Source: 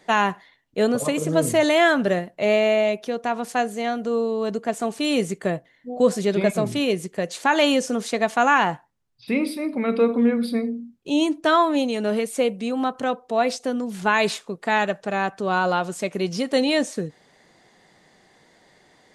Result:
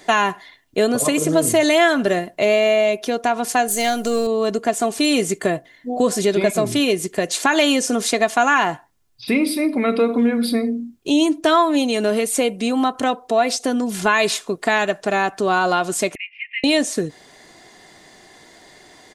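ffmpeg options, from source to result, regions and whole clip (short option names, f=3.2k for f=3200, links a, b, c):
-filter_complex "[0:a]asettb=1/sr,asplit=3[a][b][c];[a]atrim=end=3.684[d];[b]atrim=start=3.68:end=4.27,asetpts=PTS-STARTPTS,afade=t=in:d=0.004:c=qsin,afade=t=out:st=0.586:d=0.004:c=qsin,aeval=exprs='if(lt(val(0),0),0.708*val(0),val(0))':c=same,aemphasis=mode=production:type=75kf[e];[c]atrim=start=4.266[f];[d][e]acrossfade=d=0.004:c1=hsin:c2=qsin[g];[g][f]acrossfade=d=0.004:c1=qsin:c2=hsin,asettb=1/sr,asplit=3[h][i][j];[h]atrim=end=16.154[k];[i]atrim=start=16.15:end=16.64,asetpts=PTS-STARTPTS,afade=t=in:d=0.004:c=qsin,afade=t=out:st=0.486:d=0.004:c=qsin,acrusher=bits=8:mix=0:aa=0.5,asuperpass=centerf=2300:order=8:qfactor=2.8[l];[j]atrim=start=16.636[m];[k][l]acrossfade=d=0.004:c1=hsin:c2=qsin[n];[n][m]acrossfade=d=0.004:c1=qsin:c2=hsin,highshelf=f=4.7k:g=7,aecho=1:1:2.9:0.36,acompressor=threshold=-26dB:ratio=2,volume=8dB"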